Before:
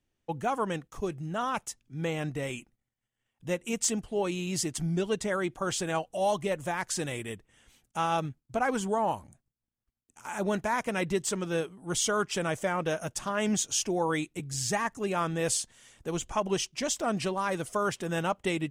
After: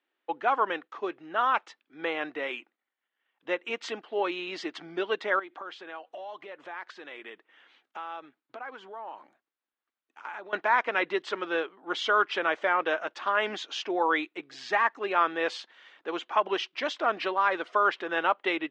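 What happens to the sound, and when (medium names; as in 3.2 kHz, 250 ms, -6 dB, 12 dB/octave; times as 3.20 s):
5.39–10.53 s: compression 16:1, threshold -39 dBFS
whole clip: elliptic band-pass 310–4000 Hz, stop band 60 dB; peaking EQ 1.5 kHz +10.5 dB 2.3 oct; trim -2 dB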